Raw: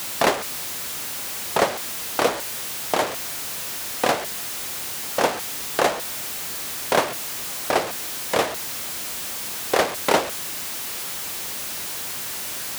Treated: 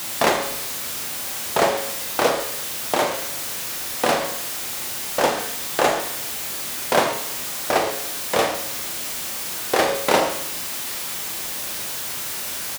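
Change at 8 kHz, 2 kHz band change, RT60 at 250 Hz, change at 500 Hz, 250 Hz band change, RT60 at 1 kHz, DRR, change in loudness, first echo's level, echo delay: +1.5 dB, +1.5 dB, 0.80 s, +2.0 dB, +2.0 dB, 0.85 s, 3.0 dB, +2.0 dB, -9.5 dB, 40 ms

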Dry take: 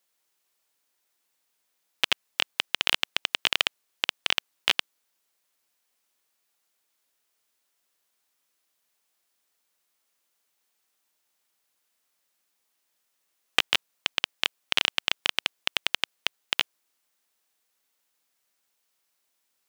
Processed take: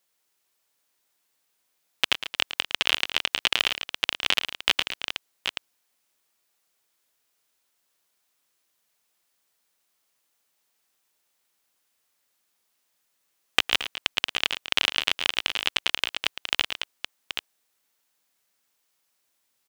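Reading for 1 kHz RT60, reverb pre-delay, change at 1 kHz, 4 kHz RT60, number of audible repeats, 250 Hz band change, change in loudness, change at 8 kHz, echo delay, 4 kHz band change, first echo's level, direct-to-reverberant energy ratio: none, none, +2.0 dB, none, 3, +3.0 dB, +1.5 dB, +2.0 dB, 0.11 s, +2.0 dB, -12.0 dB, none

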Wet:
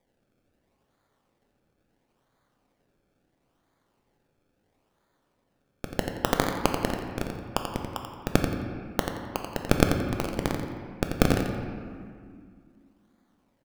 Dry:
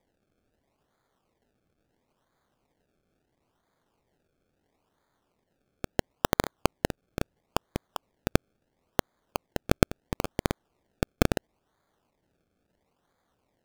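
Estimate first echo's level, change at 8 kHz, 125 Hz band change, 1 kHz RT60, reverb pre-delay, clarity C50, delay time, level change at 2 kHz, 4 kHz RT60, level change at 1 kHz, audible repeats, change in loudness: -7.5 dB, +1.5 dB, +2.5 dB, 2.1 s, 3 ms, 2.5 dB, 87 ms, +2.0 dB, 1.2 s, +2.5 dB, 1, +2.0 dB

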